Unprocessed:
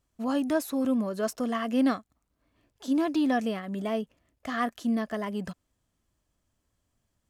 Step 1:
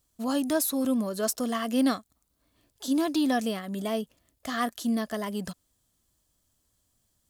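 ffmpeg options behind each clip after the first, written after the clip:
ffmpeg -i in.wav -af "aexciter=amount=3.1:drive=3.5:freq=3400" out.wav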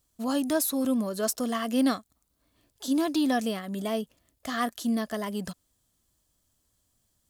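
ffmpeg -i in.wav -af anull out.wav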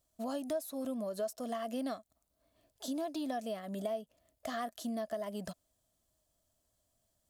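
ffmpeg -i in.wav -af "equalizer=frequency=640:width_type=o:width=0.38:gain=14,acompressor=threshold=-29dB:ratio=4,volume=-6.5dB" out.wav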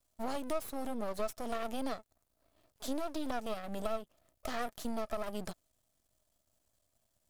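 ffmpeg -i in.wav -af "aeval=exprs='max(val(0),0)':channel_layout=same,volume=4.5dB" out.wav

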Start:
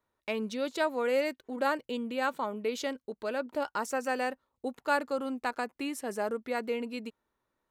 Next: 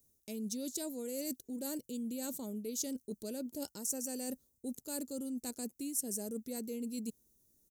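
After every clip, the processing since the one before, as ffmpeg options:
ffmpeg -i in.wav -af "firequalizer=gain_entry='entry(200,0);entry(720,-19);entry(1100,-29);entry(6000,7)':delay=0.05:min_phase=1,areverse,acompressor=threshold=-47dB:ratio=6,areverse,highshelf=frequency=8600:gain=9.5,volume=9dB" out.wav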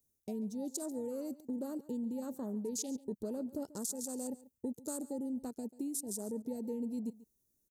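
ffmpeg -i in.wav -af "acompressor=threshold=-44dB:ratio=8,afwtdn=0.00178,aecho=1:1:139:0.119,volume=9dB" out.wav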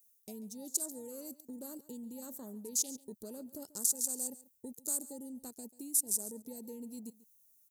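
ffmpeg -i in.wav -af "crystalizer=i=6:c=0,volume=-8dB" out.wav

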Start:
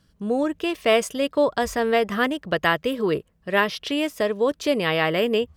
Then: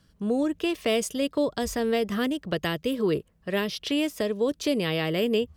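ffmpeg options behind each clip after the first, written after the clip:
ffmpeg -i in.wav -filter_complex "[0:a]acrossover=split=460|3000[link_01][link_02][link_03];[link_02]acompressor=threshold=-35dB:ratio=4[link_04];[link_01][link_04][link_03]amix=inputs=3:normalize=0" out.wav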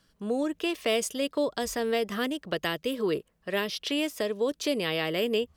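ffmpeg -i in.wav -af "equalizer=frequency=83:width=0.41:gain=-11" out.wav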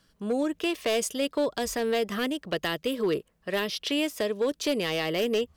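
ffmpeg -i in.wav -af "asoftclip=type=hard:threshold=-21.5dB,volume=1.5dB" out.wav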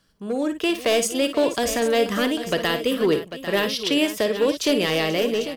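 ffmpeg -i in.wav -filter_complex "[0:a]dynaudnorm=framelen=140:gausssize=7:maxgain=6dB,asplit=2[link_01][link_02];[link_02]aecho=0:1:46|56|484|796:0.126|0.282|0.178|0.266[link_03];[link_01][link_03]amix=inputs=2:normalize=0" out.wav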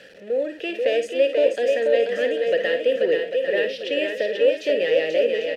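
ffmpeg -i in.wav -filter_complex "[0:a]aeval=exprs='val(0)+0.5*0.0251*sgn(val(0))':channel_layout=same,asplit=3[link_01][link_02][link_03];[link_01]bandpass=frequency=530:width_type=q:width=8,volume=0dB[link_04];[link_02]bandpass=frequency=1840:width_type=q:width=8,volume=-6dB[link_05];[link_03]bandpass=frequency=2480:width_type=q:width=8,volume=-9dB[link_06];[link_04][link_05][link_06]amix=inputs=3:normalize=0,aecho=1:1:486:0.562,volume=7dB" out.wav

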